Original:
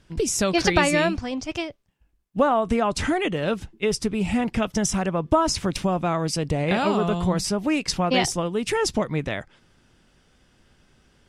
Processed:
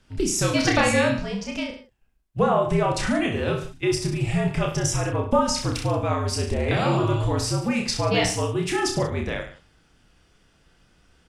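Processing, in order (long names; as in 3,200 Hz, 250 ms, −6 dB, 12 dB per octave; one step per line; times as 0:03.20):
reverse bouncing-ball delay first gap 30 ms, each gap 1.1×, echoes 5
frequency shifter −64 Hz
level −2 dB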